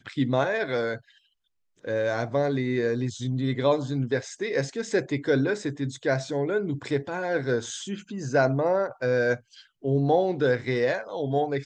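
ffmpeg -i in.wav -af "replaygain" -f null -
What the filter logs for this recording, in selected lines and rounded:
track_gain = +7.2 dB
track_peak = 0.262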